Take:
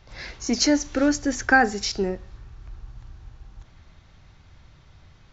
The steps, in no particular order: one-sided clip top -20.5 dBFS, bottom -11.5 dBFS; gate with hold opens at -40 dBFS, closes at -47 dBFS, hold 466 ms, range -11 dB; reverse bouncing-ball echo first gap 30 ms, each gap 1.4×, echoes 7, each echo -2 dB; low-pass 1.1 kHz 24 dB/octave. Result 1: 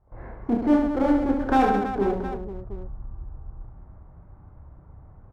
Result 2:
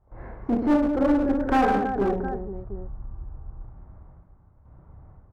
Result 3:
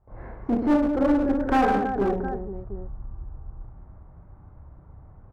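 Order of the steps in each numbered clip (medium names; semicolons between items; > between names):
low-pass > one-sided clip > reverse bouncing-ball echo > gate with hold; low-pass > gate with hold > reverse bouncing-ball echo > one-sided clip; reverse bouncing-ball echo > gate with hold > low-pass > one-sided clip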